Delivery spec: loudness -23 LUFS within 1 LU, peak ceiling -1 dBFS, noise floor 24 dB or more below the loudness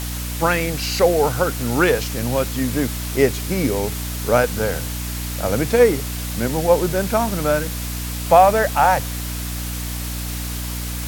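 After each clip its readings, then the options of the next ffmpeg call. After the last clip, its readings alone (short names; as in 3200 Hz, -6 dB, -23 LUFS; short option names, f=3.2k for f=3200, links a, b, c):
hum 60 Hz; harmonics up to 300 Hz; hum level -25 dBFS; noise floor -27 dBFS; noise floor target -44 dBFS; loudness -20.0 LUFS; peak -1.0 dBFS; loudness target -23.0 LUFS
-> -af "bandreject=f=60:t=h:w=4,bandreject=f=120:t=h:w=4,bandreject=f=180:t=h:w=4,bandreject=f=240:t=h:w=4,bandreject=f=300:t=h:w=4"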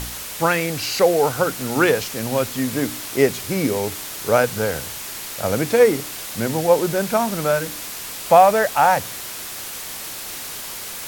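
hum none; noise floor -32 dBFS; noise floor target -45 dBFS
-> -af "afftdn=nr=13:nf=-32"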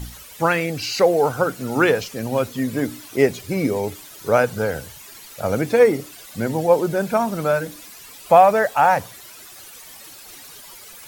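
noise floor -42 dBFS; noise floor target -44 dBFS
-> -af "afftdn=nr=6:nf=-42"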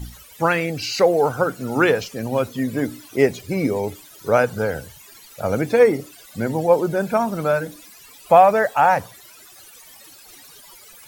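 noise floor -46 dBFS; loudness -20.0 LUFS; peak -2.0 dBFS; loudness target -23.0 LUFS
-> -af "volume=-3dB"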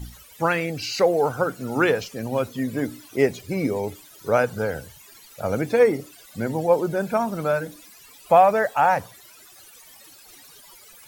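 loudness -23.0 LUFS; peak -5.0 dBFS; noise floor -49 dBFS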